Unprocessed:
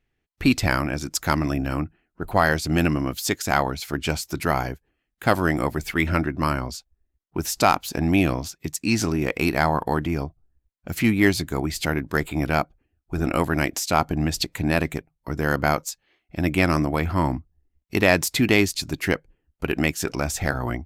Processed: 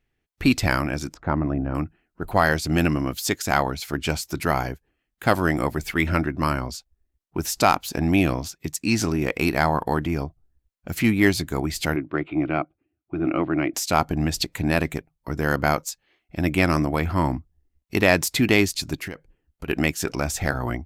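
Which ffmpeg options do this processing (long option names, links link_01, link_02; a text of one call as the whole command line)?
ffmpeg -i in.wav -filter_complex "[0:a]asettb=1/sr,asplit=3[link_01][link_02][link_03];[link_01]atrim=end=1.144[link_04];[link_02]atrim=start=1.14:end=1.75,asetpts=PTS-STARTPTS,afade=type=in:duration=0.004:curve=qsin,afade=type=out:start_time=0.606:duration=0.004:curve=qsin,lowpass=1100[link_05];[link_03]atrim=start=1.746[link_06];[link_04][link_05]acrossfade=duration=0.004:curve1=hsin:curve2=qsin[link_07];[link_07][link_06]acrossfade=duration=0.004:curve1=qsin:curve2=hsin,asplit=3[link_08][link_09][link_10];[link_08]afade=type=out:start_time=11.95:duration=0.02[link_11];[link_09]highpass=150,equalizer=frequency=210:width_type=q:width=4:gain=-9,equalizer=frequency=320:width_type=q:width=4:gain=8,equalizer=frequency=470:width_type=q:width=4:gain=-8,equalizer=frequency=910:width_type=q:width=4:gain=-8,equalizer=frequency=1700:width_type=q:width=4:gain=-9,lowpass=frequency=2600:width=0.5412,lowpass=frequency=2600:width=1.3066,afade=type=in:start_time=11.95:duration=0.02,afade=type=out:start_time=13.73:duration=0.02[link_12];[link_10]afade=type=in:start_time=13.73:duration=0.02[link_13];[link_11][link_12][link_13]amix=inputs=3:normalize=0,asplit=3[link_14][link_15][link_16];[link_14]afade=type=out:start_time=18.96:duration=0.02[link_17];[link_15]acompressor=threshold=-28dB:ratio=12:attack=3.2:release=140:knee=1:detection=peak,afade=type=in:start_time=18.96:duration=0.02,afade=type=out:start_time=19.67:duration=0.02[link_18];[link_16]afade=type=in:start_time=19.67:duration=0.02[link_19];[link_17][link_18][link_19]amix=inputs=3:normalize=0" out.wav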